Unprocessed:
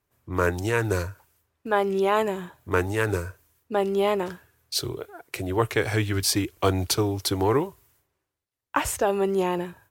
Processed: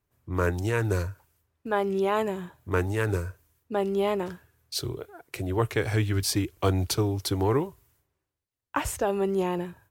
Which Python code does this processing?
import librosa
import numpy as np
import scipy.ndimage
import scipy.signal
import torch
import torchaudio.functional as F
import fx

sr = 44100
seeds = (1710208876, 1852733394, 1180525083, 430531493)

y = fx.low_shelf(x, sr, hz=250.0, db=6.5)
y = y * 10.0 ** (-4.5 / 20.0)